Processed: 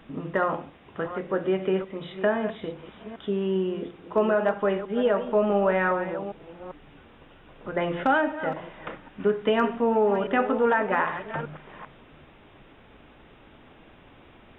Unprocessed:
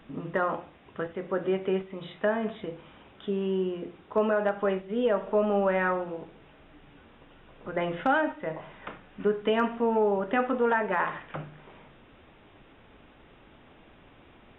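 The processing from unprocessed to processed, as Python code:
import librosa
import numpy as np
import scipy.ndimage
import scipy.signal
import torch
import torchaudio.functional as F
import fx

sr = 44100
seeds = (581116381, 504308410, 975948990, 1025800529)

y = fx.reverse_delay(x, sr, ms=395, wet_db=-11.5)
y = y * 10.0 ** (2.5 / 20.0)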